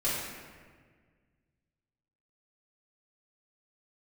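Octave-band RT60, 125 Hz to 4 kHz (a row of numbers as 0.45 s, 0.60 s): 2.5 s, 2.1 s, 1.8 s, 1.5 s, 1.5 s, 1.1 s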